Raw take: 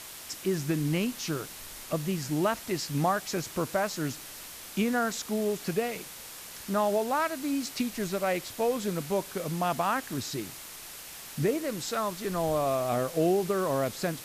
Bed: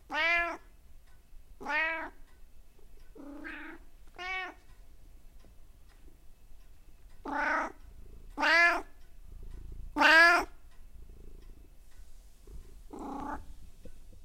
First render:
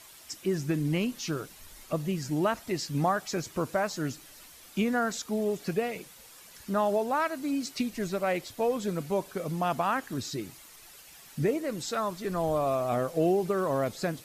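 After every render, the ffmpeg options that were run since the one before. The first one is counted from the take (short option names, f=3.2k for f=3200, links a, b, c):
-af "afftdn=nr=10:nf=-44"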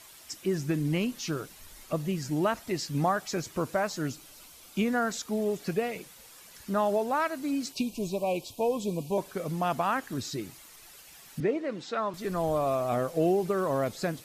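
-filter_complex "[0:a]asettb=1/sr,asplit=3[a][b][c];[a]atrim=end=4.074[d];[b]atrim=start=4.07:end=4.79,asetpts=PTS-STARTPTS,afade=t=in:d=0.004:c=qsin,afade=t=out:st=0.716:d=0.004:c=qsin,equalizer=f=1.8k:t=o:w=0.2:g=-10[e];[c]atrim=start=4.786[f];[d][e]acrossfade=d=0.004:c1=hsin:c2=qsin[g];[g][f]acrossfade=d=0.004:c1=qsin:c2=hsin,asettb=1/sr,asplit=3[h][i][j];[h]atrim=end=7.724[k];[i]atrim=start=7.72:end=9.18,asetpts=PTS-STARTPTS,afade=t=in:d=0.004:c=qsin,afade=t=out:st=1.456:d=0.004:c=qsin,asuperstop=centerf=1600:order=20:qfactor=1.3[l];[j]atrim=start=9.176[m];[k][l]acrossfade=d=0.004:c1=hsin:c2=qsin[n];[n][m]acrossfade=d=0.004:c1=qsin:c2=hsin,asettb=1/sr,asplit=3[o][p][q];[o]atrim=end=11.404[r];[p]atrim=start=11.4:end=12.14,asetpts=PTS-STARTPTS,afade=t=in:d=0.004:c=qsin,afade=t=out:st=0.736:d=0.004:c=qsin,highpass=190,lowpass=3.5k[s];[q]atrim=start=12.136[t];[r][s]acrossfade=d=0.004:c1=hsin:c2=qsin[u];[u][t]acrossfade=d=0.004:c1=qsin:c2=hsin"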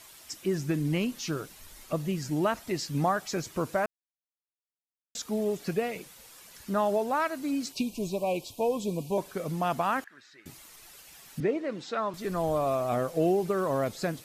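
-filter_complex "[0:a]asettb=1/sr,asplit=3[a][b][c];[a]atrim=end=10.044[d];[b]atrim=start=10.04:end=10.46,asetpts=PTS-STARTPTS,afade=t=in:d=0.004:c=qsin,afade=t=out:st=0.416:d=0.004:c=qsin,bandpass=f=1.7k:t=q:w=3.5[e];[c]atrim=start=10.456[f];[d][e]acrossfade=d=0.004:c1=hsin:c2=qsin[g];[g][f]acrossfade=d=0.004:c1=qsin:c2=hsin,asplit=3[h][i][j];[h]atrim=end=3.86,asetpts=PTS-STARTPTS,afade=t=out:st=3.856:d=0.004:c=hsin[k];[i]atrim=start=3.86:end=5.15,asetpts=PTS-STARTPTS,volume=0[l];[j]atrim=start=5.15,asetpts=PTS-STARTPTS,afade=t=in:d=0.004:c=hsin[m];[k][l][m]concat=n=3:v=0:a=1"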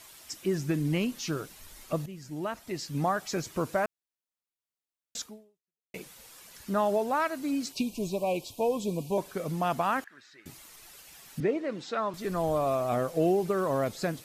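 -filter_complex "[0:a]asplit=3[a][b][c];[a]atrim=end=2.06,asetpts=PTS-STARTPTS,afade=t=out:st=2.056:d=0.004:c=hsin:silence=0.199526[d];[b]atrim=start=2.06:end=5.94,asetpts=PTS-STARTPTS,afade=t=in:d=1.27:silence=0.199526,afade=t=out:st=3.16:d=0.72:c=exp[e];[c]atrim=start=5.94,asetpts=PTS-STARTPTS,afade=t=in:d=0.004:c=hsin[f];[d][e][f]concat=n=3:v=0:a=1"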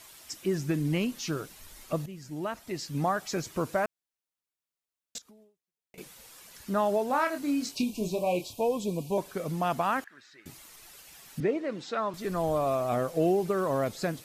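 -filter_complex "[0:a]asettb=1/sr,asplit=3[a][b][c];[a]atrim=end=5.184[d];[b]atrim=start=5.18:end=5.98,asetpts=PTS-STARTPTS,afade=t=in:d=0.004:c=qsin,afade=t=out:st=0.796:d=0.004:c=qsin,acompressor=threshold=-51dB:ratio=12:attack=3.2:release=140:knee=1:detection=peak[e];[c]atrim=start=5.976[f];[d][e]acrossfade=d=0.004:c1=hsin:c2=qsin[g];[g][f]acrossfade=d=0.004:c1=qsin:c2=hsin,asettb=1/sr,asplit=3[h][i][j];[h]atrim=end=7.074[k];[i]atrim=start=7.07:end=8.61,asetpts=PTS-STARTPTS,afade=t=in:d=0.004:c=qsin,afade=t=out:st=1.536:d=0.004:c=qsin,asplit=2[l][m];[m]adelay=28,volume=-6dB[n];[l][n]amix=inputs=2:normalize=0,atrim=end_sample=67914[o];[j]atrim=start=8.606[p];[k][o]acrossfade=d=0.004:c1=hsin:c2=qsin[q];[q][p]acrossfade=d=0.004:c1=qsin:c2=hsin"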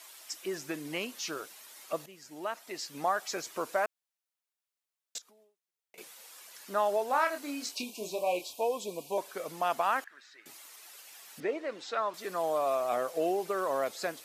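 -af "highpass=500"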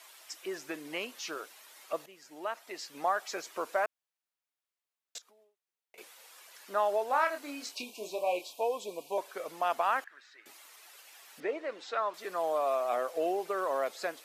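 -af "highpass=110,bass=f=250:g=-12,treble=f=4k:g=-5"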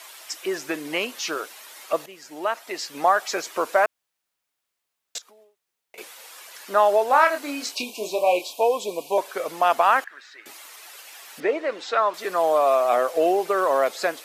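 -af "volume=11dB"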